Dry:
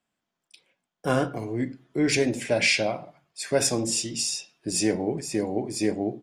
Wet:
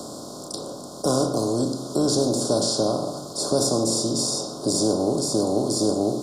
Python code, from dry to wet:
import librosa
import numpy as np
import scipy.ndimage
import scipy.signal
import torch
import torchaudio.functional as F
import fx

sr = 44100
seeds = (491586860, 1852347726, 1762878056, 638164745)

y = fx.bin_compress(x, sr, power=0.4)
y = scipy.signal.sosfilt(scipy.signal.ellip(3, 1.0, 60, [1200.0, 4000.0], 'bandstop', fs=sr, output='sos'), y)
y = fx.band_squash(y, sr, depth_pct=40)
y = F.gain(torch.from_numpy(y), -1.5).numpy()